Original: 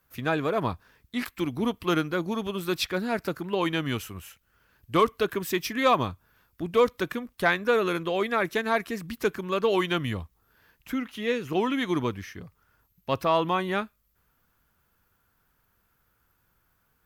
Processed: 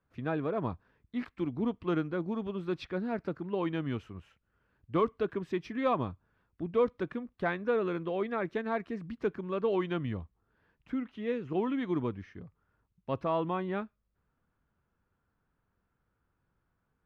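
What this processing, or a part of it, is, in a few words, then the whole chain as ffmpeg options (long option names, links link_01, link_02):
phone in a pocket: -af "lowpass=3900,equalizer=frequency=210:width_type=o:width=2.8:gain=4,highshelf=frequency=2000:gain=-9.5,volume=-7.5dB"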